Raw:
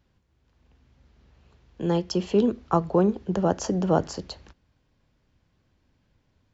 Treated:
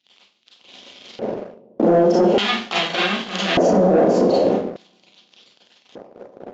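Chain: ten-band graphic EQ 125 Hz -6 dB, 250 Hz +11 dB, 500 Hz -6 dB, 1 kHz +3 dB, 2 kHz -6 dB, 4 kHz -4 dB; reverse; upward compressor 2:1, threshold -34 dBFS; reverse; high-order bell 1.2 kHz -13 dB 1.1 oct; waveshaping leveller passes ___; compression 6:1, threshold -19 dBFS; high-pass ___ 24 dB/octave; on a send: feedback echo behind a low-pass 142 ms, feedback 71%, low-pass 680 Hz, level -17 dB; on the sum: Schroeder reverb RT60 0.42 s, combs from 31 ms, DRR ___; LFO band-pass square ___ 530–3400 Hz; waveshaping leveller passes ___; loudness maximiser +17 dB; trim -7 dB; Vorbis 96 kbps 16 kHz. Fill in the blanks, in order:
5, 90 Hz, -7.5 dB, 0.42 Hz, 1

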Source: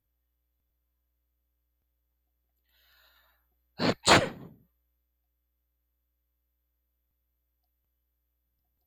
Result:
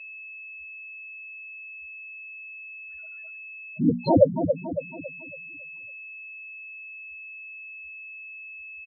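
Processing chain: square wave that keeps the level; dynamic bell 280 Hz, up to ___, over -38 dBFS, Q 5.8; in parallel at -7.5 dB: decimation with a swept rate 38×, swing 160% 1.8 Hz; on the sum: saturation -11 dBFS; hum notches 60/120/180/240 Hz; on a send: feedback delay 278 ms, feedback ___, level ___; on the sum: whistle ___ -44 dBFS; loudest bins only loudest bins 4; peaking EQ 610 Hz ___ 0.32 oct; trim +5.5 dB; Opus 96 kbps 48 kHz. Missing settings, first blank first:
+3 dB, 48%, -8 dB, 2.6 kHz, +14 dB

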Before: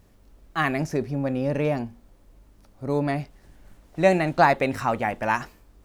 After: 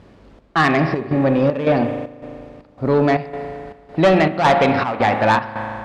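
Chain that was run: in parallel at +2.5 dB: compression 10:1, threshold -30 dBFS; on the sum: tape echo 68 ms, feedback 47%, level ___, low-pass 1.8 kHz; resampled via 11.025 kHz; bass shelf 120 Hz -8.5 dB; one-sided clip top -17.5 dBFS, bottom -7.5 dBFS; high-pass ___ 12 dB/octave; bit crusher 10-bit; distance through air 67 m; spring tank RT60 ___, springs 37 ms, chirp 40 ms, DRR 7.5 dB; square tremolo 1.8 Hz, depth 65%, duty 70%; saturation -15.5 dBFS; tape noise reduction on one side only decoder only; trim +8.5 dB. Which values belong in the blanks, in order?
-13 dB, 50 Hz, 2.4 s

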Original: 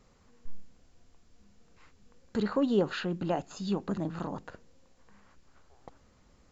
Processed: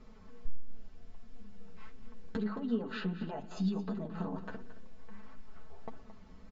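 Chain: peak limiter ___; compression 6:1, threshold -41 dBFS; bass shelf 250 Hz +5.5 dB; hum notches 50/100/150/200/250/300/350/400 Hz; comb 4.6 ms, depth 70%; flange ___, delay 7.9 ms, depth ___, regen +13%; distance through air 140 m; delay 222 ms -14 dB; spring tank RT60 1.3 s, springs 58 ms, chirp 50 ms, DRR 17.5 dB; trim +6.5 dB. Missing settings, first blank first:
-21 dBFS, 1.5 Hz, 3.2 ms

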